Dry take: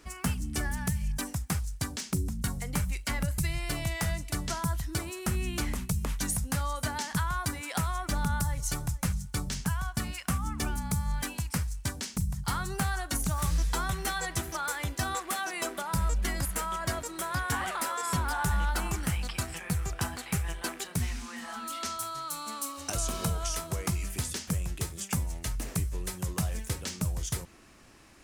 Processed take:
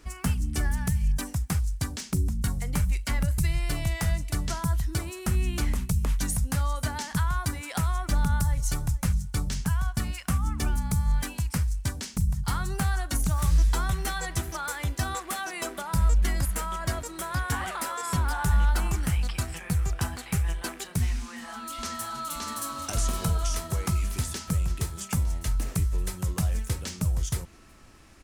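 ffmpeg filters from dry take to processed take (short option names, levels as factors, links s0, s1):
-filter_complex "[0:a]asplit=2[s0][s1];[s1]afade=t=in:st=21.21:d=0.01,afade=t=out:st=22.29:d=0.01,aecho=0:1:570|1140|1710|2280|2850|3420|3990|4560|5130|5700|6270|6840:0.749894|0.524926|0.367448|0.257214|0.18005|0.126035|0.0882243|0.061757|0.0432299|0.0302609|0.0211827|0.0148279[s2];[s0][s2]amix=inputs=2:normalize=0,lowshelf=f=100:g=9.5"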